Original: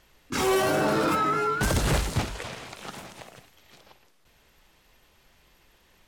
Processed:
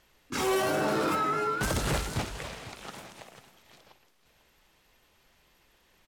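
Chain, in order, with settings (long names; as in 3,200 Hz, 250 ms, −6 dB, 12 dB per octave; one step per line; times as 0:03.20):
low-shelf EQ 130 Hz −4 dB
on a send: single-tap delay 497 ms −15.5 dB
on the sum: level −3.5 dB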